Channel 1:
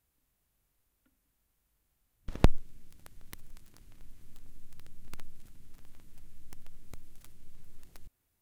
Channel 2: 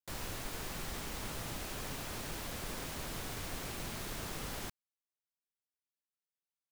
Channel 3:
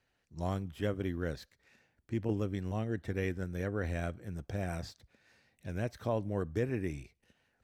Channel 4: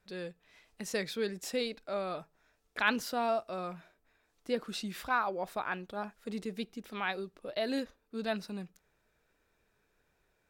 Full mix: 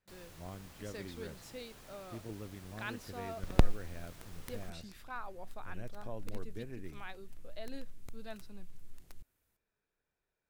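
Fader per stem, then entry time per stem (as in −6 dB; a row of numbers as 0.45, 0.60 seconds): −2.5, −14.0, −12.0, −13.5 decibels; 1.15, 0.00, 0.00, 0.00 seconds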